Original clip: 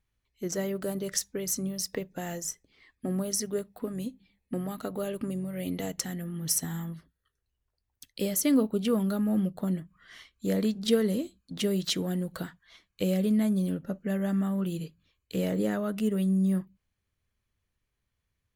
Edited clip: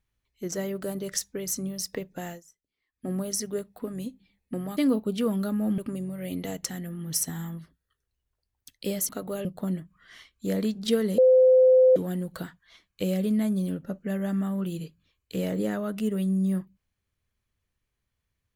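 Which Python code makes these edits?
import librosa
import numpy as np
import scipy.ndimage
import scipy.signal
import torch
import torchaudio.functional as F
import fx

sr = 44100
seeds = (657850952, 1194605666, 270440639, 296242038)

y = fx.edit(x, sr, fx.fade_down_up(start_s=2.26, length_s=0.83, db=-22.5, fade_s=0.17),
    fx.swap(start_s=4.77, length_s=0.36, other_s=8.44, other_length_s=1.01),
    fx.bleep(start_s=11.18, length_s=0.78, hz=514.0, db=-13.5), tone=tone)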